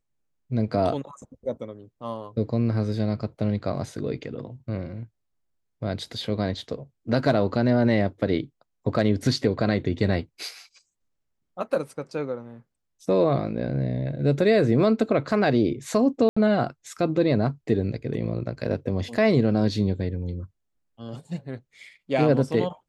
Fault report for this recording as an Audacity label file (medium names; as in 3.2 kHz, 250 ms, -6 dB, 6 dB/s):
16.290000	16.360000	dropout 75 ms